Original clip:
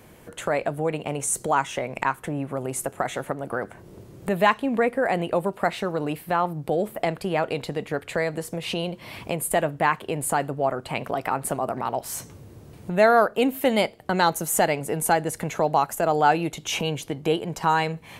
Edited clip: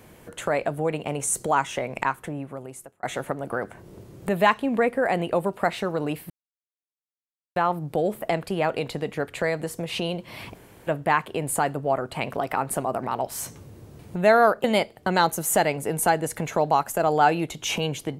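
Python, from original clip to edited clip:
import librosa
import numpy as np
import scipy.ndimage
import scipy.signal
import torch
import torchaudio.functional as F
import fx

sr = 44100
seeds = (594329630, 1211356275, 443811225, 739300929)

y = fx.edit(x, sr, fx.fade_out_span(start_s=1.99, length_s=1.04),
    fx.insert_silence(at_s=6.3, length_s=1.26),
    fx.room_tone_fill(start_s=9.29, length_s=0.32),
    fx.cut(start_s=13.38, length_s=0.29), tone=tone)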